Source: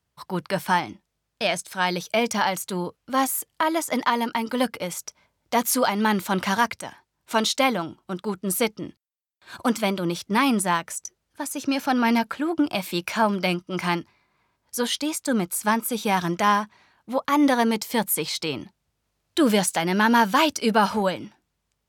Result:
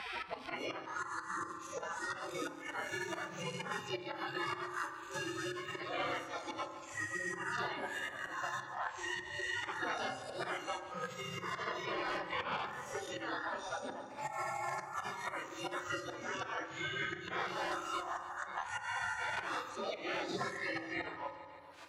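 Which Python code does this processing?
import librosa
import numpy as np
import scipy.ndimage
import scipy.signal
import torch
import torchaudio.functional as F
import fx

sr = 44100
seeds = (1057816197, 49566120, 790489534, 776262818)

y = fx.spec_swells(x, sr, rise_s=1.73)
y = fx.recorder_agc(y, sr, target_db=-10.0, rise_db_per_s=41.0, max_gain_db=30)
y = fx.spec_gate(y, sr, threshold_db=-25, keep='weak')
y = fx.highpass(y, sr, hz=430.0, slope=6)
y = fx.noise_reduce_blind(y, sr, reduce_db=17)
y = scipy.signal.sosfilt(scipy.signal.butter(2, 1300.0, 'lowpass', fs=sr, output='sos'), y)
y = fx.auto_swell(y, sr, attack_ms=320.0)
y = 10.0 ** (-38.5 / 20.0) * np.tanh(y / 10.0 ** (-38.5 / 20.0))
y = fx.tremolo_random(y, sr, seeds[0], hz=3.5, depth_pct=55)
y = fx.echo_feedback(y, sr, ms=144, feedback_pct=49, wet_db=-18)
y = fx.rev_fdn(y, sr, rt60_s=0.91, lf_ratio=1.3, hf_ratio=0.3, size_ms=17.0, drr_db=6.5)
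y = fx.band_squash(y, sr, depth_pct=100)
y = F.gain(torch.from_numpy(y), 14.5).numpy()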